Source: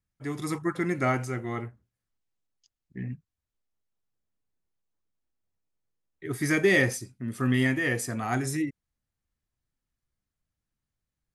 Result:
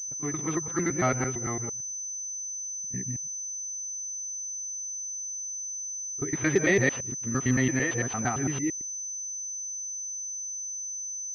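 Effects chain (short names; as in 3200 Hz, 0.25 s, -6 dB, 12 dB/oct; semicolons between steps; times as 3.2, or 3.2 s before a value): local time reversal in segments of 0.113 s; reverse echo 33 ms -20.5 dB; pulse-width modulation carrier 6100 Hz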